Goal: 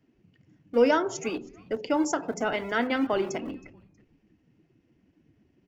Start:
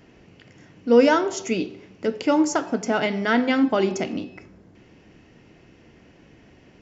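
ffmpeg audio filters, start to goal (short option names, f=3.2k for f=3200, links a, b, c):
-filter_complex "[0:a]atempo=1.2,acrossover=split=210[a][b];[a]aeval=exprs='(mod(53.1*val(0)+1,2)-1)/53.1':c=same[c];[c][b]amix=inputs=2:normalize=0,afftdn=nr=16:nf=-39,asplit=3[d][e][f];[e]adelay=319,afreqshift=-120,volume=-24dB[g];[f]adelay=638,afreqshift=-240,volume=-33.9dB[h];[d][g][h]amix=inputs=3:normalize=0,volume=-4.5dB"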